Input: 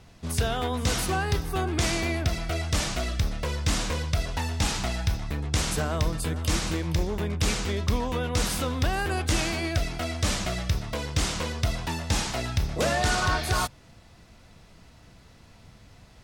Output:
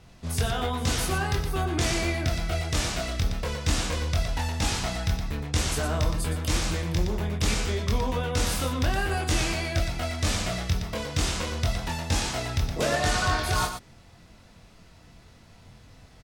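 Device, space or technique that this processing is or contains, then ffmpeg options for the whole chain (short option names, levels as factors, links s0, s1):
slapback doubling: -filter_complex "[0:a]asplit=3[s0][s1][s2];[s1]adelay=23,volume=0.668[s3];[s2]adelay=117,volume=0.447[s4];[s0][s3][s4]amix=inputs=3:normalize=0,volume=0.794"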